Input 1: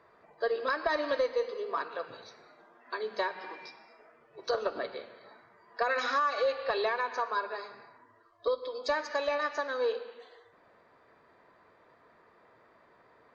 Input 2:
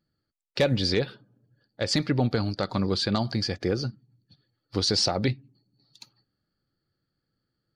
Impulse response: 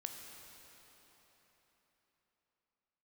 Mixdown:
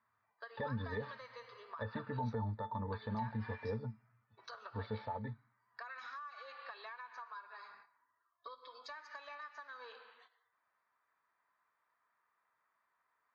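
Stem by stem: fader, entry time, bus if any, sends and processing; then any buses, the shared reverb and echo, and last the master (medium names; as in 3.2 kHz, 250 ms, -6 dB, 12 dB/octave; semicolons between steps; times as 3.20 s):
-6.0 dB, 0.00 s, no send, gate -51 dBFS, range -12 dB; resonant low shelf 730 Hz -13.5 dB, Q 1.5; compression 6:1, threshold -40 dBFS, peak gain reduction 16 dB
4.85 s -6 dB -> 5.63 s -16.5 dB, 0.00 s, no send, steep low-pass 4.4 kHz; high-order bell 1 kHz +16 dB; pitch-class resonator A, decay 0.1 s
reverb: none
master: treble shelf 5.4 kHz -10 dB; peak limiter -30 dBFS, peak gain reduction 9.5 dB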